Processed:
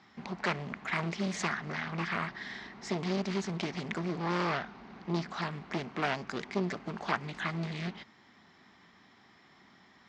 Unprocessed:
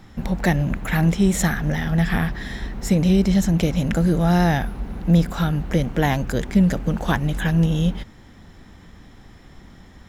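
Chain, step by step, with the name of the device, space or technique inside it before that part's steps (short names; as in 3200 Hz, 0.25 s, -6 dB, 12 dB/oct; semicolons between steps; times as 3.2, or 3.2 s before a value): 3.98–5.42 LPF 7900 Hz 24 dB/oct; full-range speaker at full volume (Doppler distortion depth 0.99 ms; speaker cabinet 270–6100 Hz, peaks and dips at 300 Hz -5 dB, 510 Hz -9 dB, 1100 Hz +4 dB, 2100 Hz +4 dB, 4600 Hz +4 dB); gain -8.5 dB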